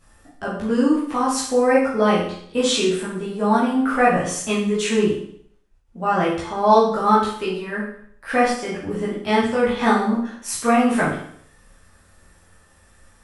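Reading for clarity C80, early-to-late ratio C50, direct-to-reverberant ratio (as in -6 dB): 7.0 dB, 3.5 dB, -8.0 dB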